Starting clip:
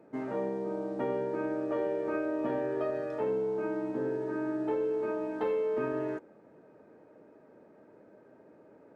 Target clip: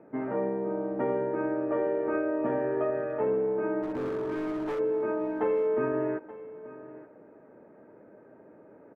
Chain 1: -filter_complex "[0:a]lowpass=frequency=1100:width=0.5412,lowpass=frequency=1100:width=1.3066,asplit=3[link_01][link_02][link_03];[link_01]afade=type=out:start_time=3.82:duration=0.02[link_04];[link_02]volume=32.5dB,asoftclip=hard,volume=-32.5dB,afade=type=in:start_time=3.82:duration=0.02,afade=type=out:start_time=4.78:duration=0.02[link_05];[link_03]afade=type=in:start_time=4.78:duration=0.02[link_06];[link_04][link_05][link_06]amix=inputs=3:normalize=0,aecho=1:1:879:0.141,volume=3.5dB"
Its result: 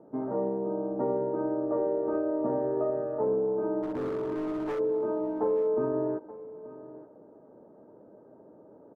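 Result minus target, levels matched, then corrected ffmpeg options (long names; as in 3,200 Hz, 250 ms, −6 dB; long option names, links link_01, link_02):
2,000 Hz band −10.5 dB
-filter_complex "[0:a]lowpass=frequency=2300:width=0.5412,lowpass=frequency=2300:width=1.3066,asplit=3[link_01][link_02][link_03];[link_01]afade=type=out:start_time=3.82:duration=0.02[link_04];[link_02]volume=32.5dB,asoftclip=hard,volume=-32.5dB,afade=type=in:start_time=3.82:duration=0.02,afade=type=out:start_time=4.78:duration=0.02[link_05];[link_03]afade=type=in:start_time=4.78:duration=0.02[link_06];[link_04][link_05][link_06]amix=inputs=3:normalize=0,aecho=1:1:879:0.141,volume=3.5dB"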